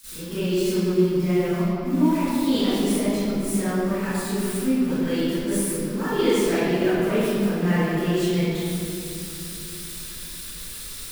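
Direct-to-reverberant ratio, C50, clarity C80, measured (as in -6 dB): -21.0 dB, -11.0 dB, -5.5 dB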